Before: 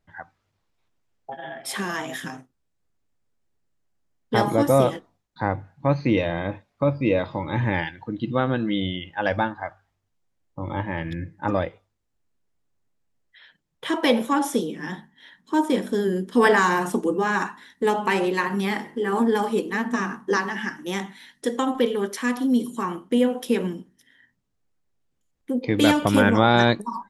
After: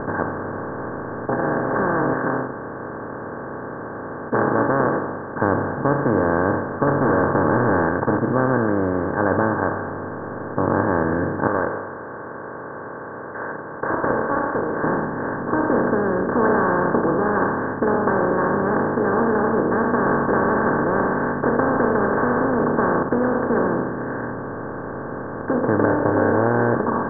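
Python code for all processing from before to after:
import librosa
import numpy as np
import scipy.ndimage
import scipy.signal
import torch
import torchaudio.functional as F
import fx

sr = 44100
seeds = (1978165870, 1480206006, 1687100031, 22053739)

y = fx.chain(x, sr, fx.self_delay(depth_ms=0.48),
    fx.highpass(hz=840.0, slope=6), at=(2.13, 5.42))
y = fx.chain(y, sr, fx.leveller(passes=2),
    fx.clip_hard(threshold_db=-18.0), at=(6.87, 8.19))
y = fx.chain(y, sr, fx.highpass(hz=1300.0, slope=12),
    fx.comb(ms=2.0, depth=0.54),
    fx.doppler_dist(depth_ms=0.24), at=(11.47, 14.84))
y = fx.chain(y, sr, fx.comb(ms=4.6, depth=0.41),
    fx.spectral_comp(ratio=2.0), at=(20.06, 23.03))
y = fx.chain(y, sr, fx.fixed_phaser(hz=500.0, stages=4),
    fx.doubler(ms=26.0, db=-6), at=(25.85, 26.75))
y = fx.bin_compress(y, sr, power=0.2)
y = scipy.signal.sosfilt(scipy.signal.cheby1(6, 1.0, 1600.0, 'lowpass', fs=sr, output='sos'), y)
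y = y * 10.0 ** (-6.0 / 20.0)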